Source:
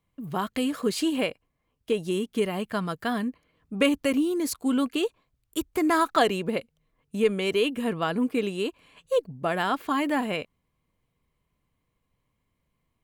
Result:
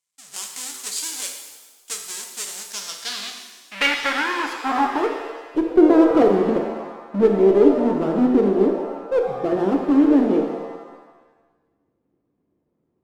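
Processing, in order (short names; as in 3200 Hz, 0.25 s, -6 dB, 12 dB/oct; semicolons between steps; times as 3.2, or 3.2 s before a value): half-waves squared off; band-pass sweep 7700 Hz -> 330 Hz, 2.55–5.82; added harmonics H 4 -25 dB, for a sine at -14 dBFS; shimmer reverb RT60 1.2 s, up +7 st, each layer -8 dB, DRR 3 dB; gain +8.5 dB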